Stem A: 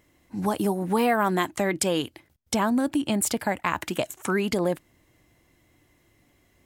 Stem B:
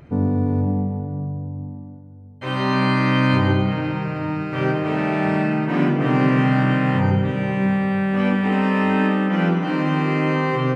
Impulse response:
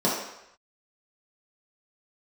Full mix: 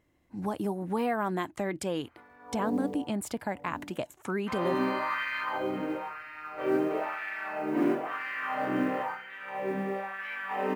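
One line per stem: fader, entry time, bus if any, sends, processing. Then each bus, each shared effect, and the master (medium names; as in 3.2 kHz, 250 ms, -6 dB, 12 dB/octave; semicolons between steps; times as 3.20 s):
-6.5 dB, 0.00 s, no send, none
-5.5 dB, 2.05 s, no send, LFO high-pass sine 1 Hz 310–1900 Hz; flange 0.75 Hz, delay 9.2 ms, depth 7.4 ms, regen -62%; modulation noise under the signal 27 dB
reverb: none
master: treble shelf 2.9 kHz -9 dB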